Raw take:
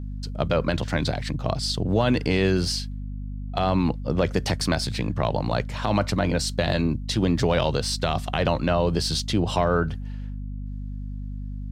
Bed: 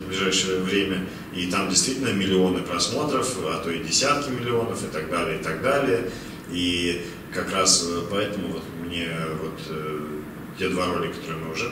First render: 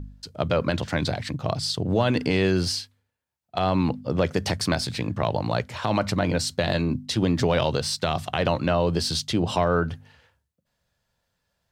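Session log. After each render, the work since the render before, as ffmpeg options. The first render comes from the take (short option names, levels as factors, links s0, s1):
-af "bandreject=f=50:t=h:w=4,bandreject=f=100:t=h:w=4,bandreject=f=150:t=h:w=4,bandreject=f=200:t=h:w=4,bandreject=f=250:t=h:w=4"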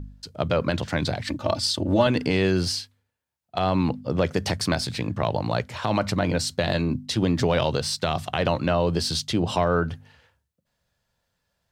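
-filter_complex "[0:a]asettb=1/sr,asplit=3[s0][s1][s2];[s0]atrim=end=1.274[s3];[s1]atrim=start=1.27:end=2.07,asetpts=PTS-STARTPTS,afade=t=in:d=0.004:c=qsin,afade=t=out:st=0.796:d=0.004:c=qsin,aecho=1:1:3.4:1,atrim=end_sample=35280[s4];[s2]atrim=start=2.066[s5];[s3][s4]acrossfade=d=0.004:c1=hsin:c2=qsin[s6];[s6][s5]acrossfade=d=0.004:c1=qsin:c2=hsin"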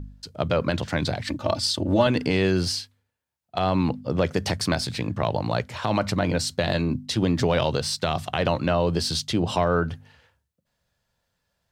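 -af anull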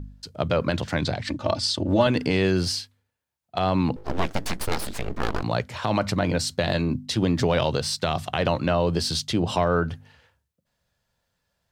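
-filter_complex "[0:a]asettb=1/sr,asplit=3[s0][s1][s2];[s0]atrim=end=1.014[s3];[s1]atrim=start=1.01:end=2.01,asetpts=PTS-STARTPTS,afade=t=in:d=0.004:c=qsin,afade=t=out:st=0.996:d=0.004:c=qsin,lowpass=8400[s4];[s2]atrim=start=2.006[s5];[s3][s4]acrossfade=d=0.004:c1=hsin:c2=qsin[s6];[s6][s5]acrossfade=d=0.004:c1=qsin:c2=hsin,asettb=1/sr,asplit=3[s7][s8][s9];[s7]atrim=end=3.964[s10];[s8]atrim=start=3.96:end=5.43,asetpts=PTS-STARTPTS,afade=t=in:d=0.004:c=qsin,afade=t=out:st=1.466:d=0.004:c=qsin,aeval=exprs='abs(val(0))':c=same[s11];[s9]atrim=start=5.426[s12];[s10][s11]acrossfade=d=0.004:c1=hsin:c2=qsin[s13];[s13][s12]acrossfade=d=0.004:c1=qsin:c2=hsin"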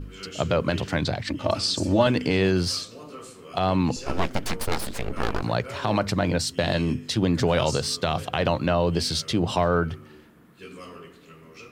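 -filter_complex "[1:a]volume=0.133[s0];[0:a][s0]amix=inputs=2:normalize=0"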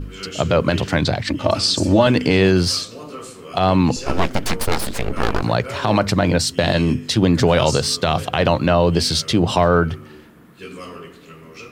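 -af "volume=2.24,alimiter=limit=0.708:level=0:latency=1"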